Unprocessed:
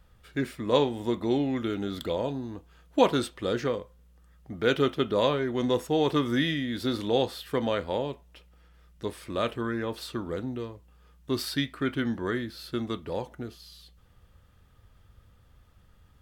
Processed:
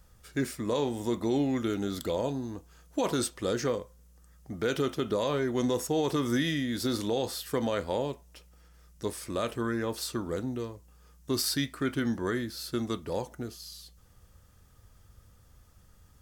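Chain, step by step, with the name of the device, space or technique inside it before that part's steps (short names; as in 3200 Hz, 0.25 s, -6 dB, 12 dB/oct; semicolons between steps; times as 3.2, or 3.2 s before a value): over-bright horn tweeter (resonant high shelf 4500 Hz +8 dB, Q 1.5; limiter -18.5 dBFS, peak gain reduction 11 dB)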